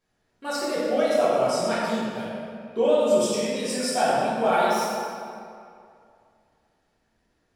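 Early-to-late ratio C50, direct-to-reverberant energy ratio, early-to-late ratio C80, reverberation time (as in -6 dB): -3.0 dB, -10.0 dB, -1.0 dB, 2.4 s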